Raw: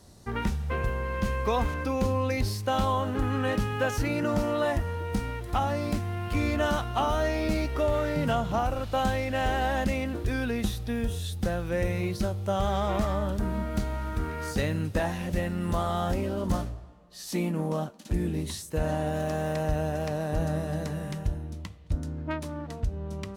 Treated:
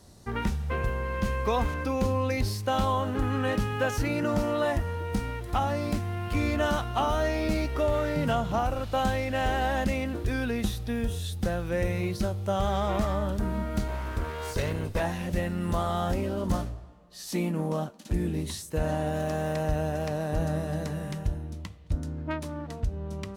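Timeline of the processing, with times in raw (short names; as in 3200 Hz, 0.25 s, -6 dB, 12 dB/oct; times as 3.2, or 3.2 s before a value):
13.88–15 minimum comb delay 1.9 ms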